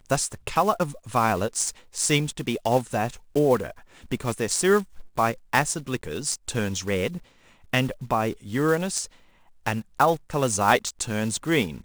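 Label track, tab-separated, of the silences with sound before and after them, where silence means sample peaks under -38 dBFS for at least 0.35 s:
7.180000	7.730000	silence
9.050000	9.660000	silence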